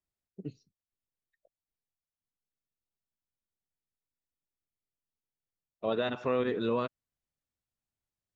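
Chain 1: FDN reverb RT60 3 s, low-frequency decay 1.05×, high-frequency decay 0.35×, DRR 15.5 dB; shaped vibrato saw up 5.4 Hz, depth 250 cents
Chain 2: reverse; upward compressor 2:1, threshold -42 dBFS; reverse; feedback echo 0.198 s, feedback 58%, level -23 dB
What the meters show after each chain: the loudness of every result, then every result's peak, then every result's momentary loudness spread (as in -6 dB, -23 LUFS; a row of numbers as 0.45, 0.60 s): -33.0, -33.0 LUFS; -18.0, -18.5 dBFS; 16, 15 LU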